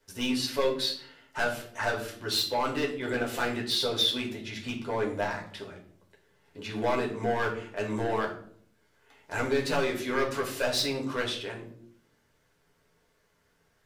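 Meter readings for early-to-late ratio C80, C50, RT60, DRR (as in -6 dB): 12.5 dB, 9.0 dB, 0.60 s, -2.5 dB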